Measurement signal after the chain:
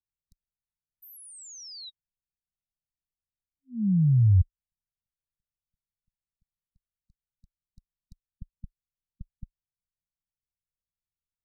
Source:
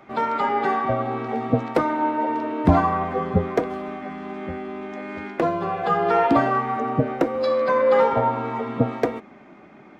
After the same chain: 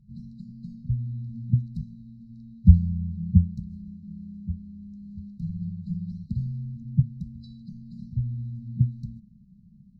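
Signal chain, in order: brick-wall FIR band-stop 220–3800 Hz; tilt EQ -4.5 dB/octave; trim -8.5 dB

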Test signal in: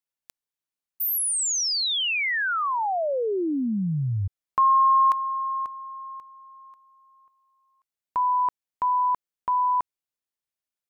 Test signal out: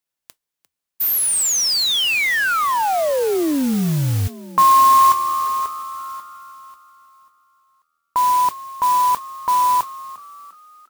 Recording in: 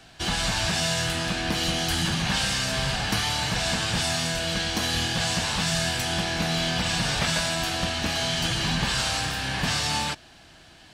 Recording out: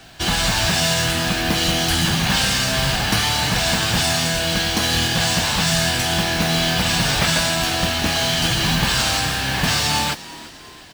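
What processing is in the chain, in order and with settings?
modulation noise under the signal 15 dB; on a send: frequency-shifting echo 349 ms, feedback 48%, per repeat +80 Hz, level -18 dB; on the sum: trim +6.5 dB

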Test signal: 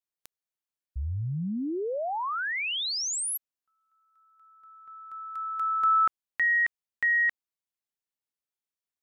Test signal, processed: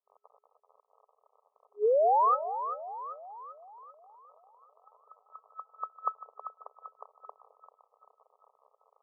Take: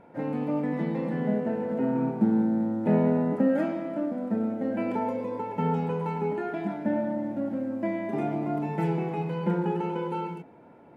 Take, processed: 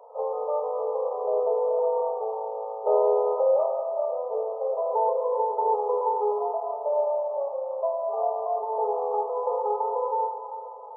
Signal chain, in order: crackle 51 per s -40 dBFS; two-band feedback delay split 620 Hz, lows 212 ms, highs 391 ms, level -10 dB; FFT band-pass 410–1300 Hz; trim +7 dB

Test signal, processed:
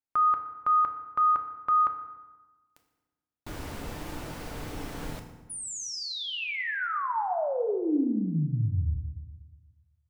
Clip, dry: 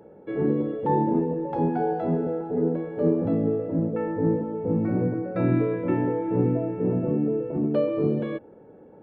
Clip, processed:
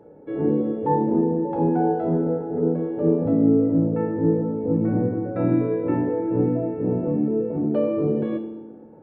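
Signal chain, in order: treble shelf 2.3 kHz -9.5 dB; FDN reverb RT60 1.2 s, low-frequency decay 1.3×, high-frequency decay 0.7×, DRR 4.5 dB

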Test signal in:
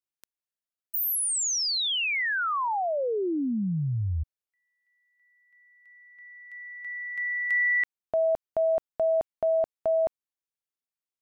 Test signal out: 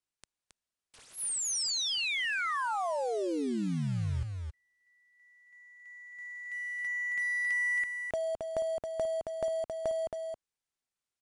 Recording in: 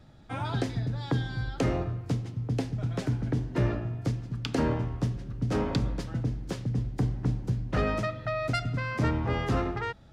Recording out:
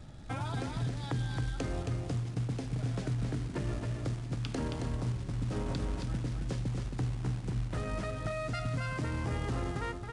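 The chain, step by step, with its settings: bass shelf 110 Hz +6.5 dB; peak limiter -20.5 dBFS; compression 3:1, threshold -38 dBFS; short-mantissa float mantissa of 2-bit; delay 271 ms -5 dB; resampled via 22.05 kHz; trim +2.5 dB

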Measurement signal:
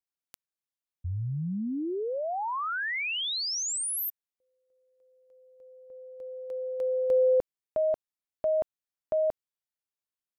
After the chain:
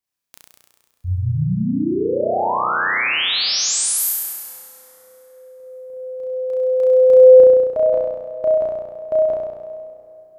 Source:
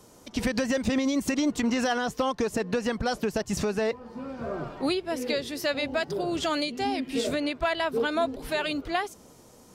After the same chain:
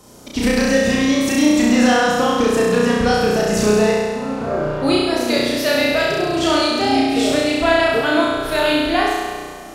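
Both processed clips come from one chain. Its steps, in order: flutter echo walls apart 5.7 m, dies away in 1.5 s; plate-style reverb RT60 4.2 s, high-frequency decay 0.6×, pre-delay 0 ms, DRR 13 dB; trim +6 dB

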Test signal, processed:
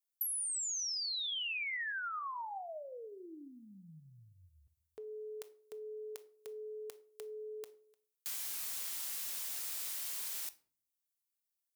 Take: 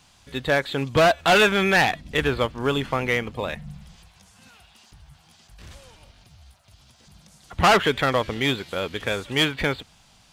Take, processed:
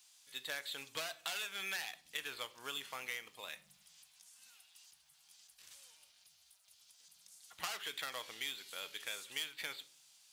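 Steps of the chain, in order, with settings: differentiator; compression 12:1, threshold -33 dBFS; simulated room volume 480 m³, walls furnished, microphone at 0.54 m; trim -3.5 dB

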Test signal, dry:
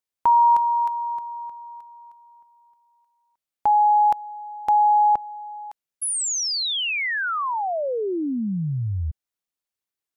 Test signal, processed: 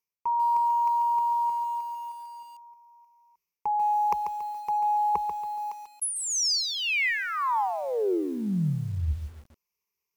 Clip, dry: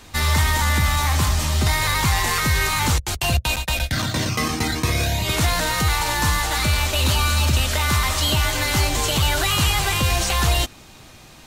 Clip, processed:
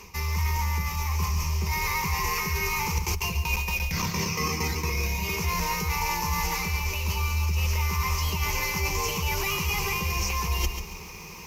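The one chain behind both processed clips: rippled EQ curve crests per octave 0.8, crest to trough 17 dB; reverse; compression 20:1, threshold -24 dBFS; reverse; bit-crushed delay 140 ms, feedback 35%, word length 8-bit, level -8 dB

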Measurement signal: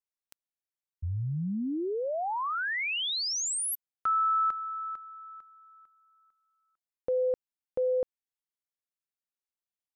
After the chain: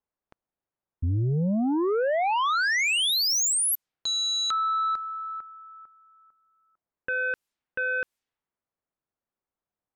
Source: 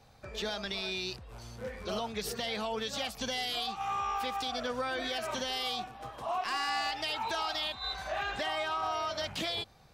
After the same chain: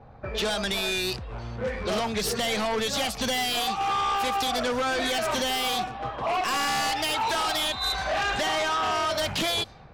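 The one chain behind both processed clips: level-controlled noise filter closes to 1.1 kHz, open at -32 dBFS; sine folder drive 8 dB, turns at -22.5 dBFS

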